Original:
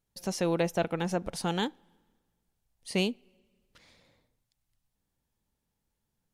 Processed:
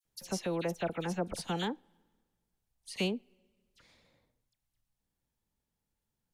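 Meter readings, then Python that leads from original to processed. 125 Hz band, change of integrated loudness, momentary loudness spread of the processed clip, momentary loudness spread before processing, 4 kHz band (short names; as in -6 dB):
-4.5 dB, -5.0 dB, 10 LU, 8 LU, -4.0 dB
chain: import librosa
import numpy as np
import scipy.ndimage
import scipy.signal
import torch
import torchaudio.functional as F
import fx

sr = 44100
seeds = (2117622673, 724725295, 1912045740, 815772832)

y = fx.dispersion(x, sr, late='lows', ms=54.0, hz=2200.0)
y = fx.rider(y, sr, range_db=10, speed_s=0.5)
y = F.gain(torch.from_numpy(y), -4.0).numpy()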